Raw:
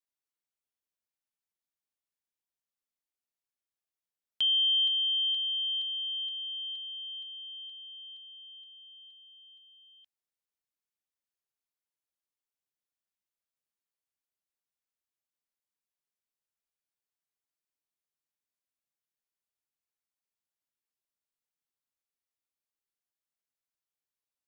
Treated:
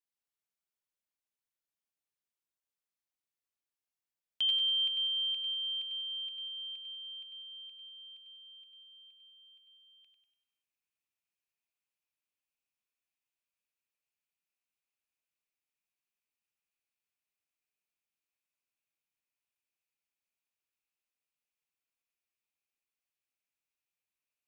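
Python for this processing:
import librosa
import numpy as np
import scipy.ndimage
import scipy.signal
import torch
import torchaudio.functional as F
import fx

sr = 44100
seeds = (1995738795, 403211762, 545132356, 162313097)

y = fx.peak_eq(x, sr, hz=2500.0, db=fx.steps((0.0, 2.5), (4.49, 12.0)), octaves=0.4)
y = fx.echo_feedback(y, sr, ms=97, feedback_pct=49, wet_db=-5.5)
y = y * 10.0 ** (-4.0 / 20.0)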